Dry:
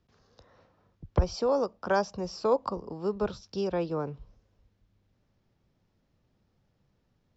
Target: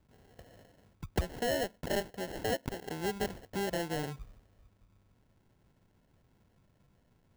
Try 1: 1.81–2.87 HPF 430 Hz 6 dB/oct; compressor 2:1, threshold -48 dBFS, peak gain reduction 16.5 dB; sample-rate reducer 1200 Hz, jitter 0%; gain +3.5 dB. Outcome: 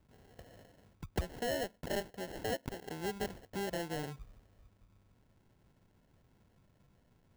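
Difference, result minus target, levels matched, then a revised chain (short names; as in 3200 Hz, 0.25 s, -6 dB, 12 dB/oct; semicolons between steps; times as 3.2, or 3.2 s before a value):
compressor: peak gain reduction +4 dB
1.81–2.87 HPF 430 Hz 6 dB/oct; compressor 2:1, threshold -40.5 dBFS, peak gain reduction 12.5 dB; sample-rate reducer 1200 Hz, jitter 0%; gain +3.5 dB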